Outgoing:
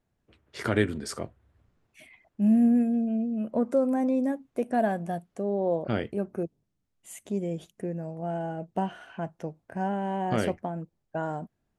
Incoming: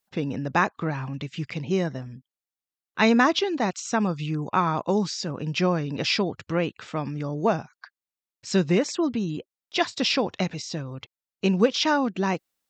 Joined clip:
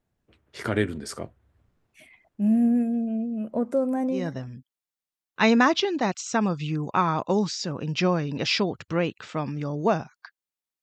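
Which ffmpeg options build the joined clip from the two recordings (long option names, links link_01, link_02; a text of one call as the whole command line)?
ffmpeg -i cue0.wav -i cue1.wav -filter_complex "[0:a]apad=whole_dur=10.82,atrim=end=10.82,atrim=end=4.34,asetpts=PTS-STARTPTS[link_01];[1:a]atrim=start=1.67:end=8.41,asetpts=PTS-STARTPTS[link_02];[link_01][link_02]acrossfade=duration=0.26:curve1=tri:curve2=tri" out.wav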